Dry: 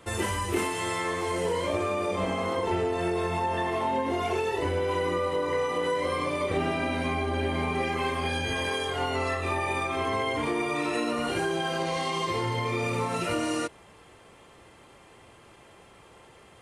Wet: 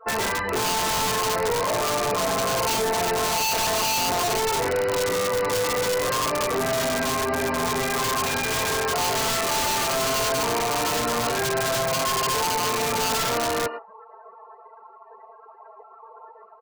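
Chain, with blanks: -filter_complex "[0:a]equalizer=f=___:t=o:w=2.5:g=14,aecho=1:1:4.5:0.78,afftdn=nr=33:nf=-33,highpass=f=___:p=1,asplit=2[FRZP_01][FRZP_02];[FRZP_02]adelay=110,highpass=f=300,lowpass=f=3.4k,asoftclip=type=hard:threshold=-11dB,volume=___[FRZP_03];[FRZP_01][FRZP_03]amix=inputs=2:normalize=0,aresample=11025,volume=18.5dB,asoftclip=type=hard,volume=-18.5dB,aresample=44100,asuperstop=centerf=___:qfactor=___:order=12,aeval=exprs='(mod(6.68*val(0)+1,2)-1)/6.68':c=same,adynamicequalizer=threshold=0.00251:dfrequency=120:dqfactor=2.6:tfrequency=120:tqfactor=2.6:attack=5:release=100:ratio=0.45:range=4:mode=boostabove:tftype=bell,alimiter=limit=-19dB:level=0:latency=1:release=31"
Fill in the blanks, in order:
980, 68, -14dB, 3400, 4.3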